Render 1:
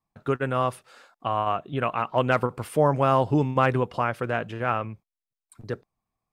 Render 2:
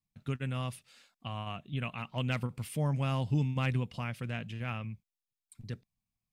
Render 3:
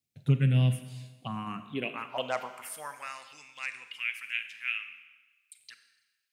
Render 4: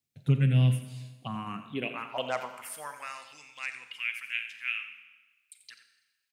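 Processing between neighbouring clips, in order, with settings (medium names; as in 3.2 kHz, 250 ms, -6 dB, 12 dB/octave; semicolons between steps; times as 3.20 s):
high-order bell 710 Hz -14.5 dB 2.7 oct; trim -3 dB
touch-sensitive phaser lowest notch 170 Hz, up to 3.2 kHz, full sweep at -27 dBFS; high-pass sweep 140 Hz -> 2.4 kHz, 1.08–3.26 s; Schroeder reverb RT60 1.2 s, combs from 32 ms, DRR 9.5 dB; trim +5.5 dB
delay 87 ms -12.5 dB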